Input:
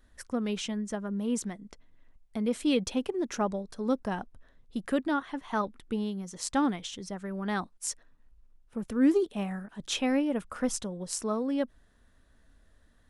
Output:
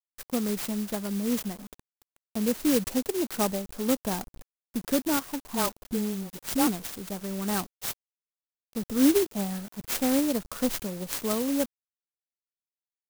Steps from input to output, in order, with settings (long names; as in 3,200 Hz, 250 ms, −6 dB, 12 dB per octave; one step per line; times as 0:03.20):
0:05.40–0:06.67: all-pass dispersion highs, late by 58 ms, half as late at 560 Hz
bit-depth reduction 8 bits, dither none
converter with an unsteady clock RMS 0.13 ms
level +2.5 dB